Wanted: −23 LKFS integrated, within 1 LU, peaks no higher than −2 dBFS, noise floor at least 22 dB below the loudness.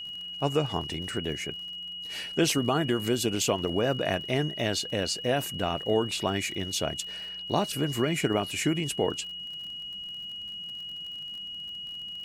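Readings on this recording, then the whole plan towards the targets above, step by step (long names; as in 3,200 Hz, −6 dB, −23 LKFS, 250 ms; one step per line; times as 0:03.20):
crackle rate 46 per second; interfering tone 2,900 Hz; level of the tone −36 dBFS; integrated loudness −29.5 LKFS; sample peak −11.0 dBFS; target loudness −23.0 LKFS
→ click removal
notch filter 2,900 Hz, Q 30
level +6.5 dB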